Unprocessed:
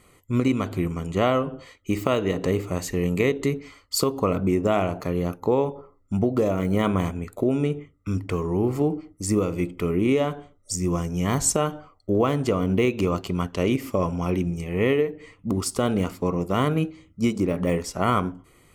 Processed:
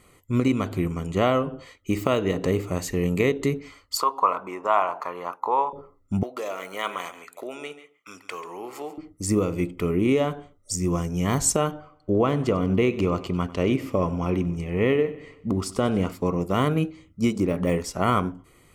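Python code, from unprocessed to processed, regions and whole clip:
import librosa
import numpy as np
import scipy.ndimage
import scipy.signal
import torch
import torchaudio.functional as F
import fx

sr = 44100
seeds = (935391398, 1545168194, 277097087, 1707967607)

y = fx.chain(x, sr, fx.highpass_res(hz=1000.0, q=4.1),
    fx.tilt_eq(slope=-3.0), at=(3.97, 5.73))
y = fx.chain(y, sr, fx.highpass(hz=820.0, slope=12),
    fx.peak_eq(hz=3400.0, db=2.0, octaves=2.0),
    fx.echo_single(ms=138, db=-14.0), at=(6.23, 8.98))
y = fx.chain(y, sr, fx.high_shelf(hz=6600.0, db=-10.5),
    fx.echo_feedback(ms=95, feedback_pct=55, wet_db=-18), at=(11.71, 16.12))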